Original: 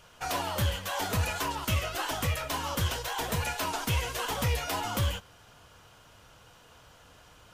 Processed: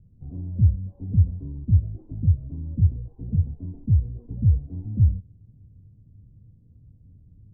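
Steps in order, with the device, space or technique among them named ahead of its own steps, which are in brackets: the neighbour's flat through the wall (LPF 230 Hz 24 dB/oct; bell 99 Hz +6 dB 0.58 oct); gain +8 dB

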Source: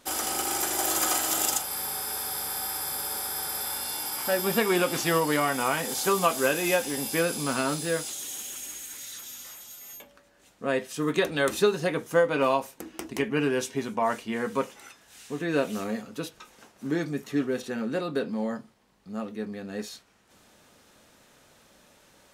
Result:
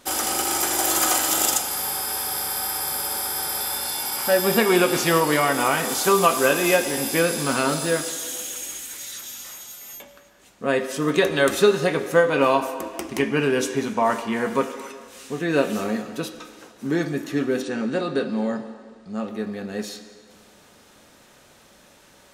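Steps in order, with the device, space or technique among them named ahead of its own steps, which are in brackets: filtered reverb send (on a send: HPF 240 Hz 24 dB/oct + LPF 8300 Hz + reverb RT60 1.8 s, pre-delay 3 ms, DRR 8 dB); 17.63–19.28 on the sum: elliptic low-pass 9100 Hz, stop band 40 dB; gain +5 dB

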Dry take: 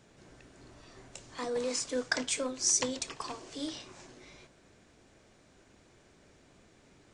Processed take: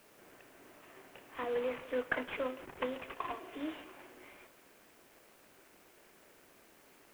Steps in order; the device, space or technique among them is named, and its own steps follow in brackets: 3.15–3.74 comb 2.9 ms, depth 53%; tape echo 0.171 s, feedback 44%, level -18 dB, low-pass 2000 Hz; army field radio (BPF 320–3200 Hz; CVSD 16 kbps; white noise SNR 24 dB)

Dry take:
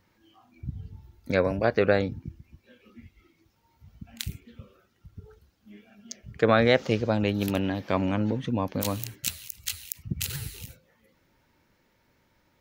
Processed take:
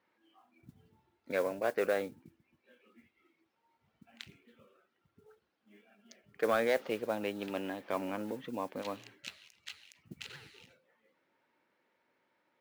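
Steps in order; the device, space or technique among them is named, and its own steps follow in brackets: carbon microphone (BPF 340–3000 Hz; soft clip -13 dBFS, distortion -18 dB; modulation noise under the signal 23 dB); gain -6 dB

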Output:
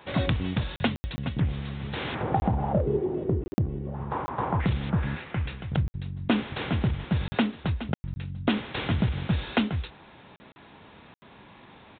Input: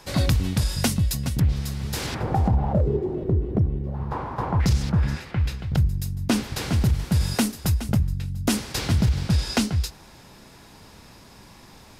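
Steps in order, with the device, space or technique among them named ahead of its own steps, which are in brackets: call with lost packets (HPF 170 Hz 6 dB/oct; downsampling 8000 Hz; packet loss bursts)

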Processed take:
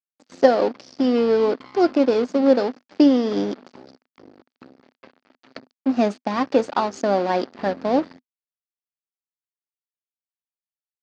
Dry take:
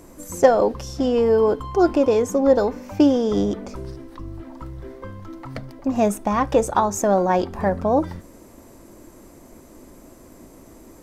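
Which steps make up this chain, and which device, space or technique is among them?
blown loudspeaker (crossover distortion -30.5 dBFS; speaker cabinet 240–5500 Hz, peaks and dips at 250 Hz +9 dB, 1000 Hz -4 dB, 4600 Hz +8 dB)

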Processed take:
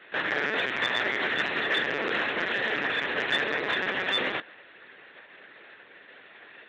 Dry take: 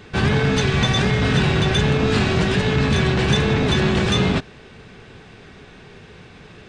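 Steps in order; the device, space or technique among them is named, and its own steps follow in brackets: talking toy (LPC vocoder at 8 kHz pitch kept; HPF 500 Hz 12 dB/oct; bell 1800 Hz +10 dB 0.36 oct; soft clip -8.5 dBFS, distortion -24 dB); gain -5 dB

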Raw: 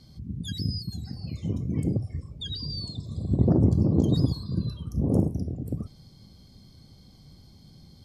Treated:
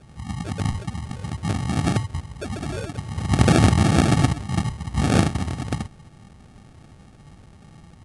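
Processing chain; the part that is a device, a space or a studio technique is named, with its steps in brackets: crushed at another speed (playback speed 2×; sample-and-hold 22×; playback speed 0.5×); gain +4.5 dB

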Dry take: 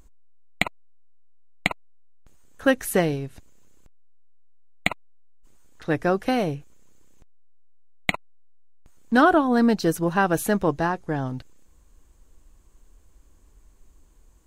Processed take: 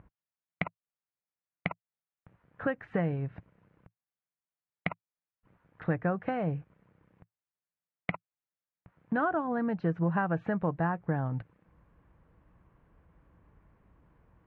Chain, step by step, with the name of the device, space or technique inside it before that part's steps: bass amplifier (compressor 3:1, threshold -31 dBFS, peak gain reduction 14 dB; speaker cabinet 86–2100 Hz, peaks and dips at 110 Hz +6 dB, 170 Hz +7 dB, 250 Hz -5 dB, 380 Hz -6 dB); gain +2 dB

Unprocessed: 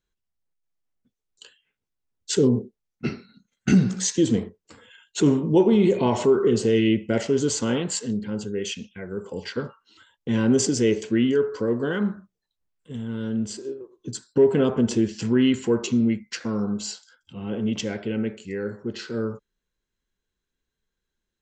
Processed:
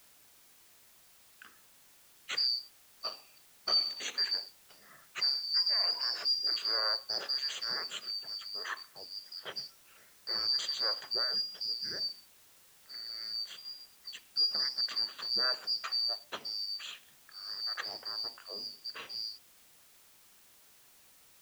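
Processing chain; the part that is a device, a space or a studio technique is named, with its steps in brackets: split-band scrambled radio (four-band scrambler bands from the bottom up 2341; BPF 310–3100 Hz; white noise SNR 24 dB); gain -4.5 dB

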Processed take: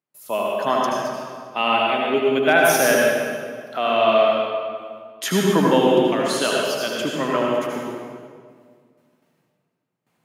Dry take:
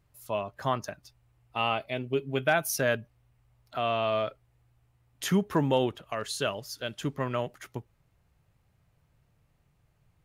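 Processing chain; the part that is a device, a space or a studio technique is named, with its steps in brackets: gate with hold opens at -57 dBFS; HPF 200 Hz 24 dB/oct; stairwell (reverb RT60 1.9 s, pre-delay 72 ms, DRR -3 dB); gain +6.5 dB

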